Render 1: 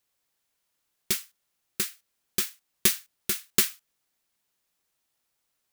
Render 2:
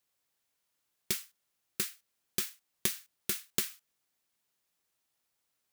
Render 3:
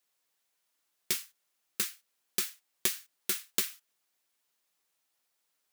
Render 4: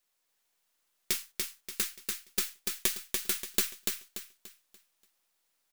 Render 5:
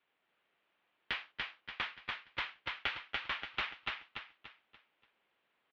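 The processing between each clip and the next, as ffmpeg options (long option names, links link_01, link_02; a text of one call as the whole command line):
ffmpeg -i in.wav -af "highpass=42,acompressor=threshold=-24dB:ratio=6,volume=-3dB" out.wav
ffmpeg -i in.wav -af "equalizer=frequency=72:width=0.39:gain=-11.5,flanger=delay=2.6:depth=9.7:regen=-33:speed=1.3:shape=triangular,volume=6dB" out.wav
ffmpeg -i in.wav -filter_complex "[0:a]aeval=exprs='if(lt(val(0),0),0.708*val(0),val(0))':channel_layout=same,asplit=2[link_01][link_02];[link_02]aecho=0:1:290|580|870|1160|1450:0.668|0.234|0.0819|0.0287|0.01[link_03];[link_01][link_03]amix=inputs=2:normalize=0,volume=1.5dB" out.wav
ffmpeg -i in.wav -filter_complex "[0:a]asoftclip=type=tanh:threshold=-23dB,highpass=frequency=560:width_type=q:width=0.5412,highpass=frequency=560:width_type=q:width=1.307,lowpass=frequency=3400:width_type=q:width=0.5176,lowpass=frequency=3400:width_type=q:width=0.7071,lowpass=frequency=3400:width_type=q:width=1.932,afreqshift=-320,asplit=2[link_01][link_02];[link_02]adelay=279.9,volume=-16dB,highshelf=frequency=4000:gain=-6.3[link_03];[link_01][link_03]amix=inputs=2:normalize=0,volume=6dB" out.wav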